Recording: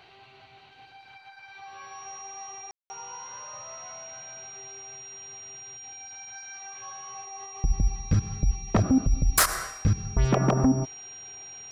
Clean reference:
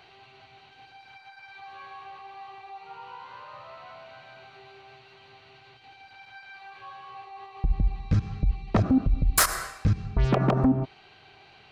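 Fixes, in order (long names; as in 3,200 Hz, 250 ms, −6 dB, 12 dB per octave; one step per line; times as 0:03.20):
notch filter 5,700 Hz, Q 30
ambience match 0:02.71–0:02.90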